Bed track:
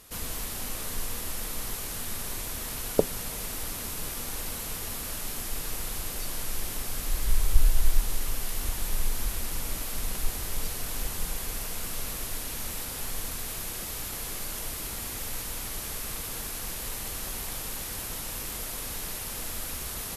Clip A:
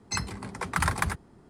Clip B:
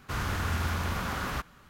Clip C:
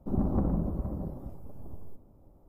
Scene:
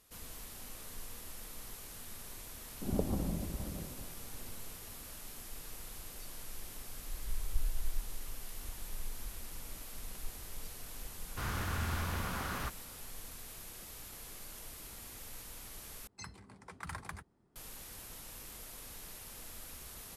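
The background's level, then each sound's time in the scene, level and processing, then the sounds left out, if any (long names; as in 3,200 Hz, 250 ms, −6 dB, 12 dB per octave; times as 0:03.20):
bed track −13.5 dB
0:02.75: mix in C −7.5 dB
0:11.28: mix in B −6 dB
0:16.07: overwrite with A −17.5 dB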